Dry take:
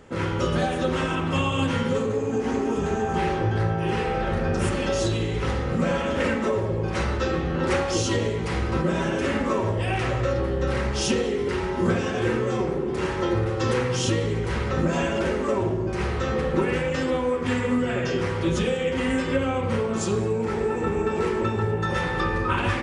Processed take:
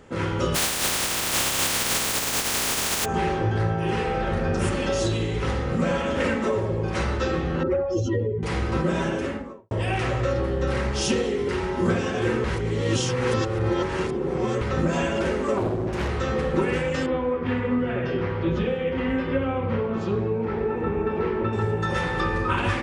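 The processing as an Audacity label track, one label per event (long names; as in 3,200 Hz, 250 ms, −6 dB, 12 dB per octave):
0.540000	3.040000	compressing power law on the bin magnitudes exponent 0.12
7.630000	8.430000	expanding power law on the bin magnitudes exponent 2.1
9.000000	9.710000	fade out and dull
12.440000	14.610000	reverse
15.570000	16.090000	highs frequency-modulated by the lows depth 0.72 ms
17.060000	21.530000	high-frequency loss of the air 310 metres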